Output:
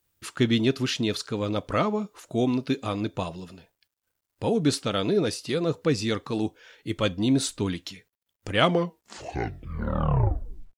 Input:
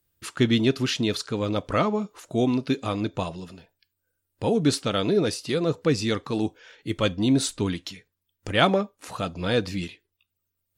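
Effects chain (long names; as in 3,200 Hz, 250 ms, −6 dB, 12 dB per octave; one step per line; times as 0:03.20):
turntable brake at the end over 2.26 s
bit-depth reduction 12 bits, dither none
level −1.5 dB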